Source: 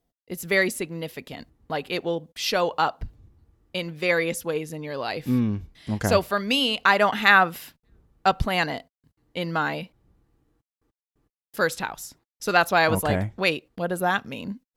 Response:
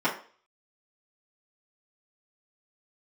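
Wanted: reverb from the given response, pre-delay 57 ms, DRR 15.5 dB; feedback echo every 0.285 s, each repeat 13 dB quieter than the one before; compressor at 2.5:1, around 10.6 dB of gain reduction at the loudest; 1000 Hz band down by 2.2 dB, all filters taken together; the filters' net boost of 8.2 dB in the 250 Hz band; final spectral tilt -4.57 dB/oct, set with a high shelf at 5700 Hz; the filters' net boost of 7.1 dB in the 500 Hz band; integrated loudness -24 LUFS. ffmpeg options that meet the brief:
-filter_complex "[0:a]equalizer=f=250:t=o:g=8.5,equalizer=f=500:t=o:g=8.5,equalizer=f=1k:t=o:g=-7.5,highshelf=f=5.7k:g=-6.5,acompressor=threshold=-26dB:ratio=2.5,aecho=1:1:285|570|855:0.224|0.0493|0.0108,asplit=2[a][b];[1:a]atrim=start_sample=2205,adelay=57[c];[b][c]afir=irnorm=-1:irlink=0,volume=-28.5dB[d];[a][d]amix=inputs=2:normalize=0,volume=4.5dB"

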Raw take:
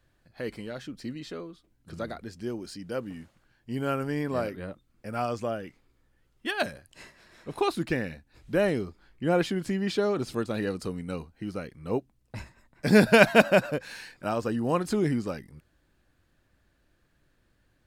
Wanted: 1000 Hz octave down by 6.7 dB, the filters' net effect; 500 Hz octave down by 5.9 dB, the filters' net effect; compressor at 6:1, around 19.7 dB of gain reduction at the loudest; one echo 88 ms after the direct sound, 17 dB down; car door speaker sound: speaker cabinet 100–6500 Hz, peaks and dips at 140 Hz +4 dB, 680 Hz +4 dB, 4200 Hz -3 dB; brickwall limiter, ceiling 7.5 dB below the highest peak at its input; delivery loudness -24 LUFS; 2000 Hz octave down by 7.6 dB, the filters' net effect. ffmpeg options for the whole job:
-af "equalizer=f=500:t=o:g=-6.5,equalizer=f=1k:t=o:g=-8,equalizer=f=2k:t=o:g=-7,acompressor=threshold=-39dB:ratio=6,alimiter=level_in=10.5dB:limit=-24dB:level=0:latency=1,volume=-10.5dB,highpass=100,equalizer=f=140:t=q:w=4:g=4,equalizer=f=680:t=q:w=4:g=4,equalizer=f=4.2k:t=q:w=4:g=-3,lowpass=f=6.5k:w=0.5412,lowpass=f=6.5k:w=1.3066,aecho=1:1:88:0.141,volume=21.5dB"

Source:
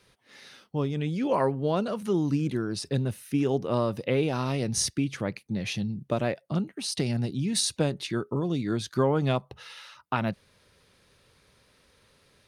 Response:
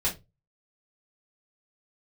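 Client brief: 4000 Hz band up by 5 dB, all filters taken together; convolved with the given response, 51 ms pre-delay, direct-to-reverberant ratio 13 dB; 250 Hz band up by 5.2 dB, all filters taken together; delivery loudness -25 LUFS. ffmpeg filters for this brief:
-filter_complex "[0:a]equalizer=f=250:t=o:g=6.5,equalizer=f=4k:t=o:g=6,asplit=2[a][b];[1:a]atrim=start_sample=2205,adelay=51[c];[b][c]afir=irnorm=-1:irlink=0,volume=-21dB[d];[a][d]amix=inputs=2:normalize=0"

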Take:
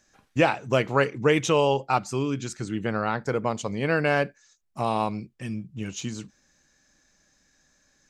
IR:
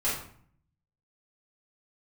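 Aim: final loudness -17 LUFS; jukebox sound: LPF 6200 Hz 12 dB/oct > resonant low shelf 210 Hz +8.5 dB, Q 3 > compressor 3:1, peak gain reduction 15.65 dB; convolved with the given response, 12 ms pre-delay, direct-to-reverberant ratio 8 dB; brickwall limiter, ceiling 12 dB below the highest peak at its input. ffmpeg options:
-filter_complex "[0:a]alimiter=limit=-18dB:level=0:latency=1,asplit=2[a][b];[1:a]atrim=start_sample=2205,adelay=12[c];[b][c]afir=irnorm=-1:irlink=0,volume=-17dB[d];[a][d]amix=inputs=2:normalize=0,lowpass=6.2k,lowshelf=f=210:t=q:w=3:g=8.5,acompressor=threshold=-36dB:ratio=3,volume=19.5dB"

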